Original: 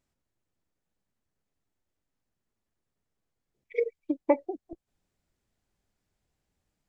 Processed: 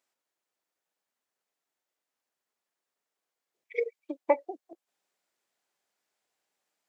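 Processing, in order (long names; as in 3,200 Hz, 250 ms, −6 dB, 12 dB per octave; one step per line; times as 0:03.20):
high-pass filter 570 Hz 12 dB per octave
level +2.5 dB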